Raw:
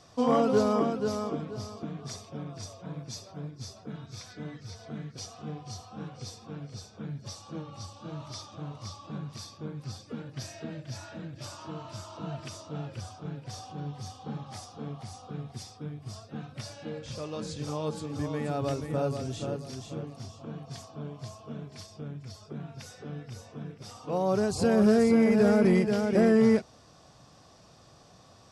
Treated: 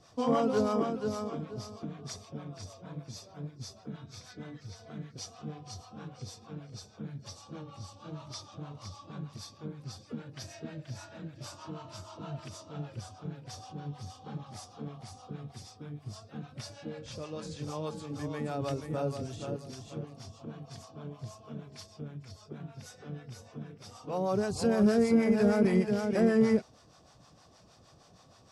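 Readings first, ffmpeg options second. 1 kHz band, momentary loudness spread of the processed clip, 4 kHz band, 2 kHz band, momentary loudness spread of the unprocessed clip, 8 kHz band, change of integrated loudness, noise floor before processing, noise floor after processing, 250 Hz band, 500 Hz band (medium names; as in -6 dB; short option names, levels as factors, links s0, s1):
-3.5 dB, 20 LU, -3.0 dB, -3.5 dB, 20 LU, -3.0 dB, -3.0 dB, -56 dBFS, -59 dBFS, -3.0 dB, -3.5 dB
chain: -filter_complex "[0:a]acrossover=split=570[s0][s1];[s0]aeval=exprs='val(0)*(1-0.7/2+0.7/2*cos(2*PI*6.4*n/s))':c=same[s2];[s1]aeval=exprs='val(0)*(1-0.7/2-0.7/2*cos(2*PI*6.4*n/s))':c=same[s3];[s2][s3]amix=inputs=2:normalize=0"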